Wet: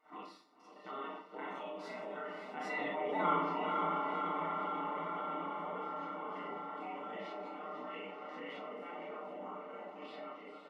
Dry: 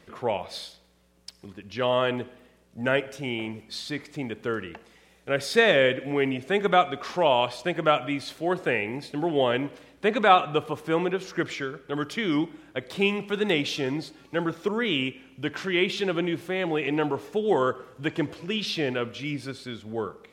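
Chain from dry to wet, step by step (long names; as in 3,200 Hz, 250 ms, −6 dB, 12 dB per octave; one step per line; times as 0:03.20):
spectrum averaged block by block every 50 ms
source passing by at 0:06.16, 29 m/s, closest 1.6 metres
Savitzky-Golay smoothing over 65 samples
tempo change 1.9×
gate on every frequency bin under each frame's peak −15 dB weak
linear-phase brick-wall high-pass 180 Hz
low-shelf EQ 240 Hz +7 dB
comb filter 6.6 ms, depth 72%
feedback delay with all-pass diffusion 527 ms, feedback 45%, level −10 dB
four-comb reverb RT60 0.45 s, combs from 28 ms, DRR −6.5 dB
envelope flattener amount 70%
level −3.5 dB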